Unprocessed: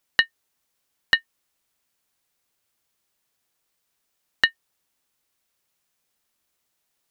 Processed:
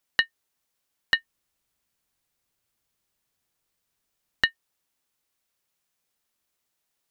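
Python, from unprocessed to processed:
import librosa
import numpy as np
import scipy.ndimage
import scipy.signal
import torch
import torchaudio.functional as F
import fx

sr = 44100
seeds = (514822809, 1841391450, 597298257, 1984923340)

y = fx.low_shelf(x, sr, hz=190.0, db=8.5, at=(1.15, 4.44))
y = F.gain(torch.from_numpy(y), -3.5).numpy()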